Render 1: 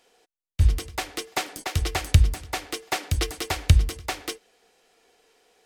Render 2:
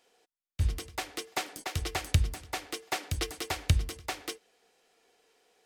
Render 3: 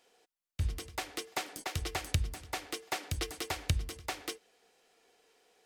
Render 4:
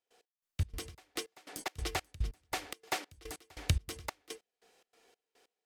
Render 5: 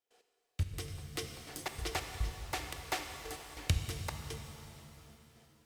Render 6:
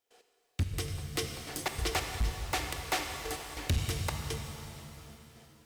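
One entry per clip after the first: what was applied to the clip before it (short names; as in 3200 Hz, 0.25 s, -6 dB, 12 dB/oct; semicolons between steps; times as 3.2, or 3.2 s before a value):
low shelf 60 Hz -9 dB; gain -5.5 dB
compressor 1.5:1, threshold -36 dBFS, peak gain reduction 6.5 dB
step gate ".x..xx.xx." 143 bpm -24 dB; gain +1 dB
shimmer reverb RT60 3 s, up +7 st, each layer -8 dB, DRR 5 dB; gain -1.5 dB
hard clip -30.5 dBFS, distortion -9 dB; gain +6.5 dB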